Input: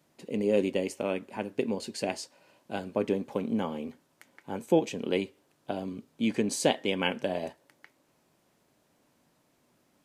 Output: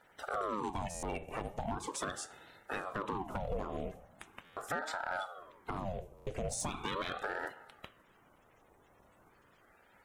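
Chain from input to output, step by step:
spectral magnitudes quantised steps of 30 dB
on a send at −15 dB: convolution reverb RT60 0.60 s, pre-delay 5 ms
on the sum: brickwall limiter −20 dBFS, peak gain reduction 9 dB
notch filter 5,000 Hz, Q 6.9
downward compressor 4 to 1, threshold −39 dBFS, peak gain reduction 12.5 dB
parametric band 4,300 Hz −10 dB 0.28 octaves
hard clipping −35 dBFS, distortion −15 dB
buffer that repeats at 0:00.90/0:04.44/0:06.14, samples 512, times 10
ring modulator whose carrier an LFO sweeps 660 Hz, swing 70%, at 0.4 Hz
level +7.5 dB

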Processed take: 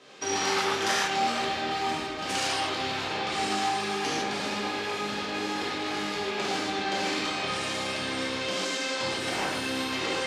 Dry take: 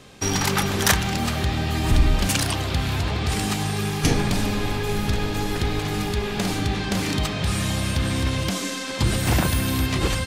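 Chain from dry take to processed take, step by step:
downward compressor 3 to 1, threshold −22 dBFS, peak gain reduction 8.5 dB
band-pass filter 360–5,700 Hz
reverb whose tail is shaped and stops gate 180 ms flat, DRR −7 dB
level −6.5 dB

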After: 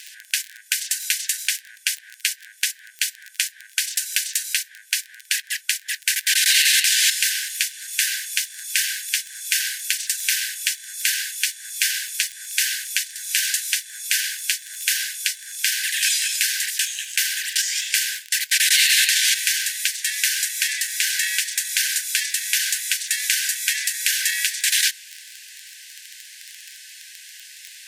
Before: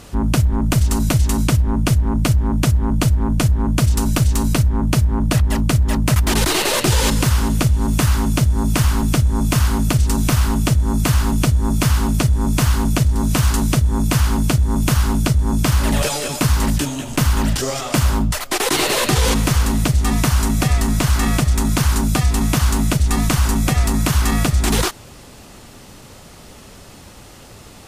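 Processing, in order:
surface crackle 20 per second −24 dBFS
linear-phase brick-wall high-pass 1,500 Hz
level +4.5 dB

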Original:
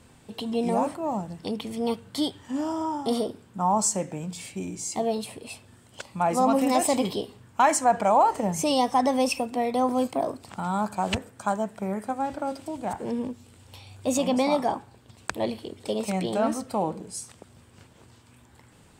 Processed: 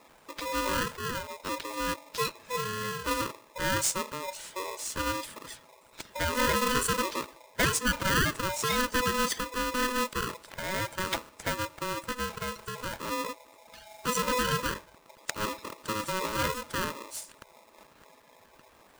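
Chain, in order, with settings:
spectral magnitudes quantised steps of 30 dB
dynamic equaliser 810 Hz, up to −5 dB, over −37 dBFS, Q 1.4
ring modulator with a square carrier 750 Hz
level −2.5 dB

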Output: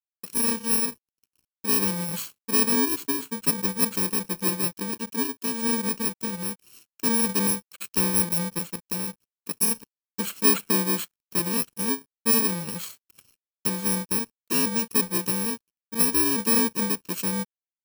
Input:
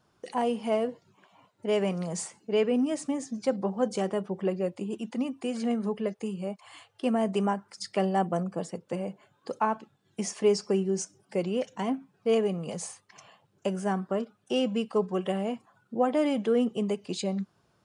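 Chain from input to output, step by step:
samples in bit-reversed order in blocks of 64 samples
dead-zone distortion −53.5 dBFS
level +3.5 dB

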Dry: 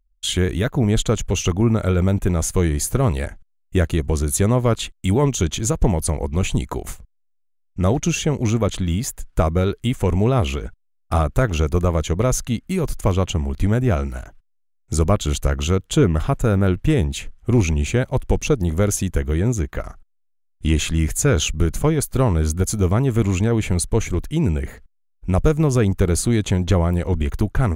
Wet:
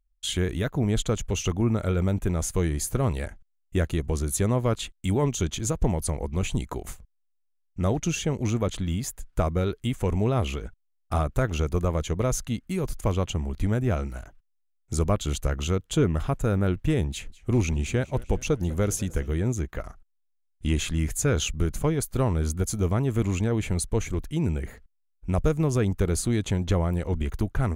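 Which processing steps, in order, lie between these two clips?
0:17.10–0:19.29: feedback echo with a swinging delay time 199 ms, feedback 61%, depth 169 cents, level −21 dB
level −6.5 dB

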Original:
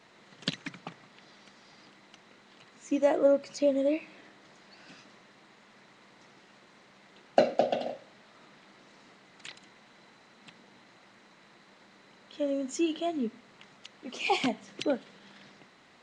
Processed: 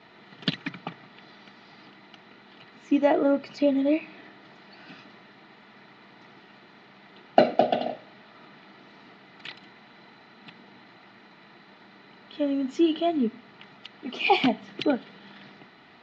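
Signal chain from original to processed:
low-pass filter 4,200 Hz 24 dB per octave
notch comb filter 540 Hz
level +7 dB

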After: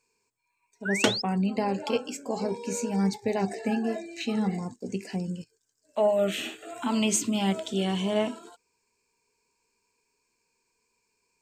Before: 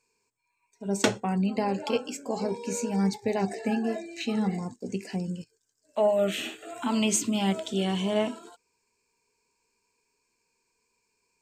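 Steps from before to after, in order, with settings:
sound drawn into the spectrogram rise, 0:00.85–0:01.22, 1,400–5,400 Hz −31 dBFS

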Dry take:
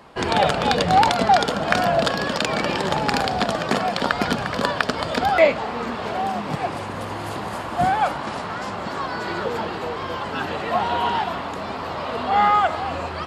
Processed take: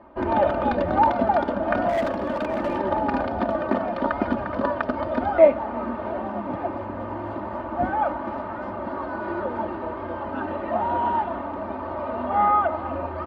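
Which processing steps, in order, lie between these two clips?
low-pass filter 1,100 Hz 12 dB per octave
comb filter 3.3 ms, depth 86%
0:01.89–0:02.78: hard clipping −17.5 dBFS, distortion −21 dB
single-tap delay 352 ms −22 dB
level −2.5 dB

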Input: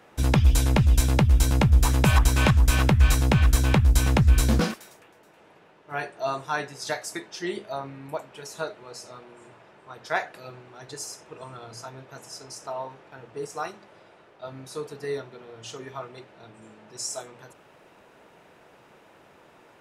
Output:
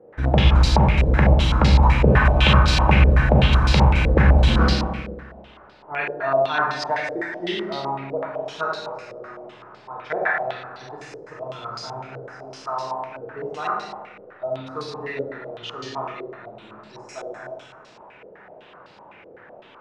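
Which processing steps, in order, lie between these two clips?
four-comb reverb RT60 1.4 s, combs from 30 ms, DRR −3 dB
low-pass on a step sequencer 7.9 Hz 490–4,500 Hz
level −1 dB

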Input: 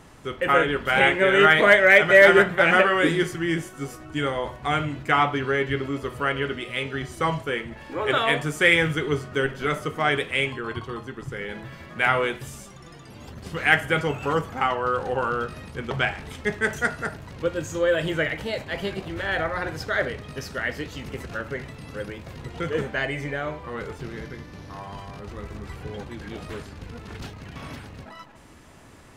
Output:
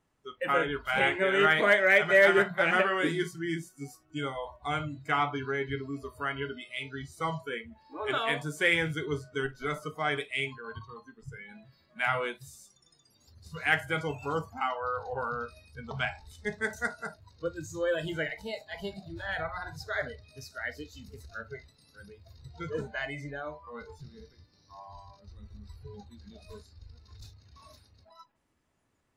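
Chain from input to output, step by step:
hum removal 58.76 Hz, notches 3
noise reduction from a noise print of the clip's start 19 dB
level −7.5 dB

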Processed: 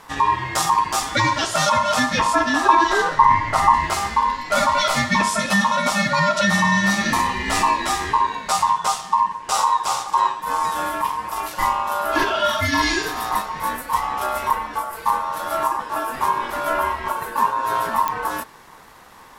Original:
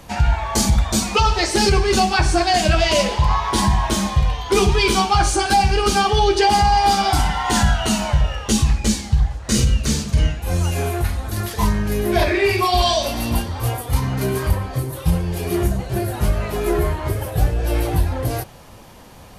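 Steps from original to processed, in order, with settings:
0:02.35–0:03.74: tilt shelving filter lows +6 dB, about 700 Hz
ring modulation 1,000 Hz
digital clicks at 0:18.08, −7 dBFS

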